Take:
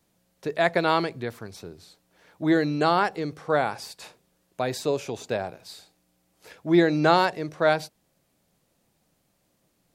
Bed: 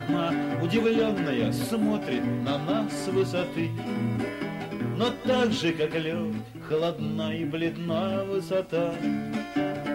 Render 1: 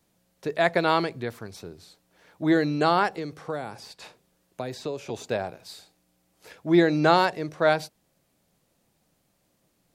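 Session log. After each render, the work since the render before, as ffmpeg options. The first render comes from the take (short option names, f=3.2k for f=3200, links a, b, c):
-filter_complex "[0:a]asettb=1/sr,asplit=3[a][b][c];[a]atrim=end=3.164[d];[b]atrim=start=3.16:end=5.1,asetpts=PTS-STARTPTS,afade=t=in:d=0.004:c=qsin,afade=t=out:st=1.936:d=0.004:c=qsin,acrossover=split=470|5700[e][f][g];[e]acompressor=threshold=-33dB:ratio=4[h];[f]acompressor=threshold=-36dB:ratio=4[i];[g]acompressor=threshold=-56dB:ratio=4[j];[h][i][j]amix=inputs=3:normalize=0[k];[c]atrim=start=5.096[l];[d][k]acrossfade=d=0.004:c1=hsin:c2=qsin[m];[m][l]acrossfade=d=0.004:c1=qsin:c2=hsin"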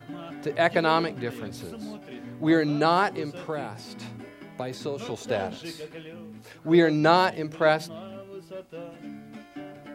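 -filter_complex "[1:a]volume=-13dB[a];[0:a][a]amix=inputs=2:normalize=0"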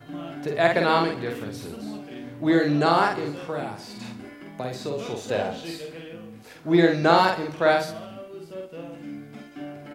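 -filter_complex "[0:a]asplit=2[a][b];[b]adelay=48,volume=-3dB[c];[a][c]amix=inputs=2:normalize=0,aecho=1:1:69|138|207|276|345:0.178|0.096|0.0519|0.028|0.0151"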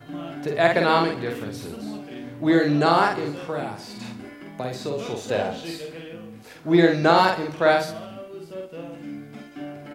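-af "volume=1.5dB,alimiter=limit=-3dB:level=0:latency=1"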